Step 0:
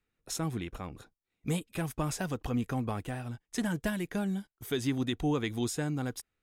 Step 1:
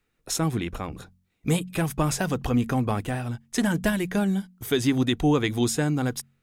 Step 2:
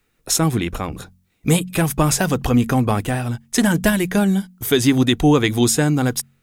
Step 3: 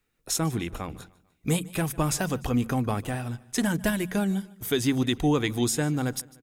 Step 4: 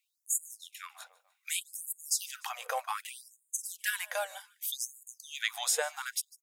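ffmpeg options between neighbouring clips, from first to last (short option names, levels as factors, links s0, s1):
-af "bandreject=f=45.52:t=h:w=4,bandreject=f=91.04:t=h:w=4,bandreject=f=136.56:t=h:w=4,bandreject=f=182.08:t=h:w=4,bandreject=f=227.6:t=h:w=4,volume=2.66"
-af "highshelf=f=6700:g=5.5,volume=2.24"
-af "aecho=1:1:149|298|447:0.075|0.0352|0.0166,volume=0.355"
-af "afftfilt=real='re*gte(b*sr/1024,460*pow(6800/460,0.5+0.5*sin(2*PI*0.65*pts/sr)))':imag='im*gte(b*sr/1024,460*pow(6800/460,0.5+0.5*sin(2*PI*0.65*pts/sr)))':win_size=1024:overlap=0.75"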